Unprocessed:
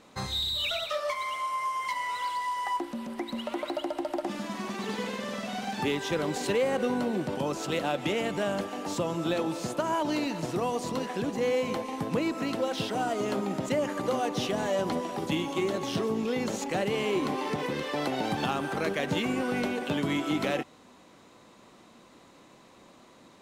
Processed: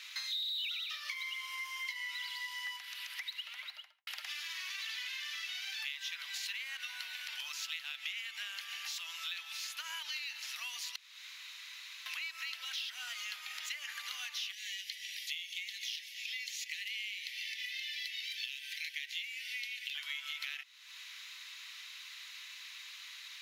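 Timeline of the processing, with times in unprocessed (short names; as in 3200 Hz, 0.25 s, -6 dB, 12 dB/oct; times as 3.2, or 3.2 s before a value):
3.25–4.07 studio fade out
10.96–12.06 room tone
14.52–19.95 elliptic high-pass 1900 Hz
whole clip: inverse Chebyshev high-pass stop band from 350 Hz, stop band 80 dB; bell 8300 Hz -14.5 dB 0.54 oct; compressor 4:1, threshold -58 dBFS; gain +16.5 dB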